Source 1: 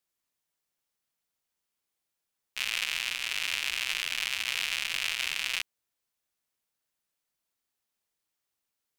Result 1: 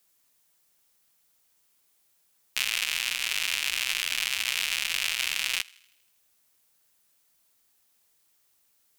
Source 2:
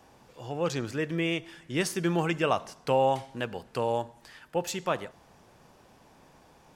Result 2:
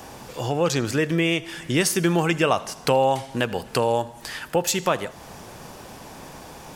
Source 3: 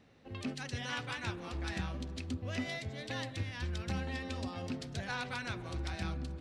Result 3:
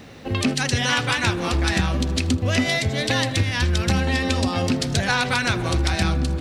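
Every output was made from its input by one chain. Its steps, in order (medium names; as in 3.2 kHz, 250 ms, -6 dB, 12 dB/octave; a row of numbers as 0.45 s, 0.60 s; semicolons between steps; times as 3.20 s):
treble shelf 6.2 kHz +7.5 dB; compression 2:1, threshold -41 dBFS; thinning echo 80 ms, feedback 58%, high-pass 650 Hz, level -23.5 dB; peak normalisation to -6 dBFS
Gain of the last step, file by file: +11.0 dB, +16.0 dB, +21.0 dB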